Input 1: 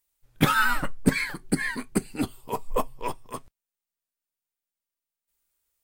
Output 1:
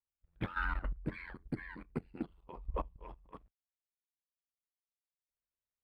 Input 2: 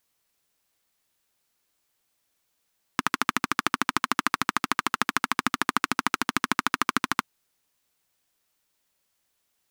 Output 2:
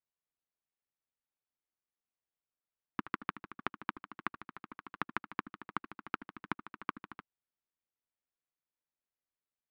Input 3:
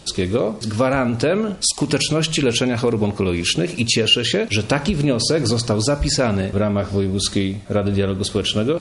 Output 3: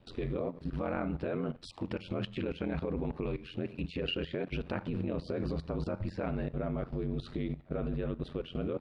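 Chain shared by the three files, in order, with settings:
high-frequency loss of the air 450 metres
ring modulation 44 Hz
output level in coarse steps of 14 dB
level −5.5 dB

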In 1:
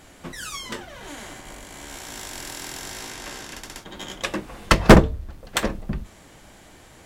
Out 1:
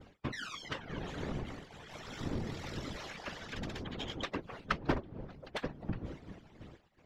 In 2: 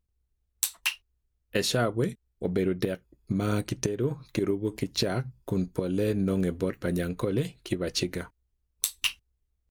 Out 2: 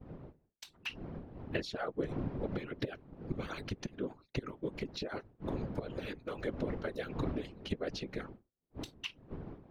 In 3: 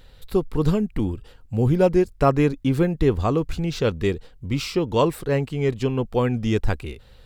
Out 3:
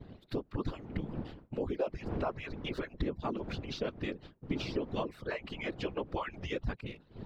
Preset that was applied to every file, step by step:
harmonic-percussive split with one part muted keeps percussive
wind on the microphone 280 Hz −39 dBFS
downward expander −41 dBFS
high-shelf EQ 3,900 Hz +10.5 dB
downward compressor 5 to 1, threshold −32 dBFS
random phases in short frames
high-frequency loss of the air 260 metres

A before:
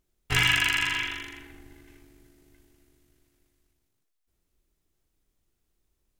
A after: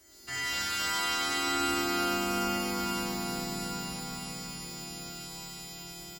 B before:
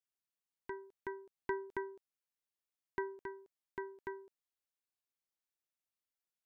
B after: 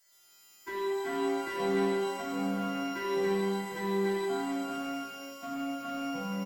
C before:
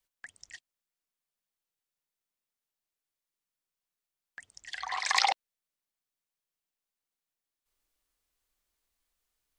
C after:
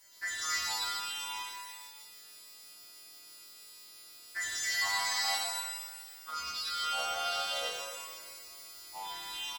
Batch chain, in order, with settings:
every partial snapped to a pitch grid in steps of 2 semitones
high-pass filter 98 Hz 12 dB per octave
high-shelf EQ 8,300 Hz −6 dB
comb filter 3 ms, depth 89%
automatic gain control gain up to 5 dB
brickwall limiter −34.5 dBFS
power curve on the samples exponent 0.7
delay with pitch and tempo change per echo 115 ms, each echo −6 semitones, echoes 2
reverb with rising layers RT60 1.7 s, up +12 semitones, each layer −8 dB, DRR −4.5 dB
level +2.5 dB

